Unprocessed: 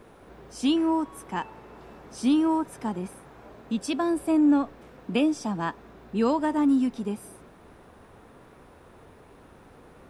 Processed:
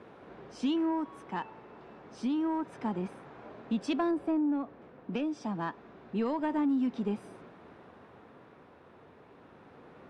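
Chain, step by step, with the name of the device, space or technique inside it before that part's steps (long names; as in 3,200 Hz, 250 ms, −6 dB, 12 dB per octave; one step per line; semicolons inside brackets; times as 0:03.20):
AM radio (band-pass filter 120–3,700 Hz; downward compressor, threshold −24 dBFS, peak gain reduction 7.5 dB; soft clipping −19.5 dBFS, distortion −24 dB; amplitude tremolo 0.28 Hz, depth 35%)
0:04.11–0:05.13: high-shelf EQ 2,400 Hz −9 dB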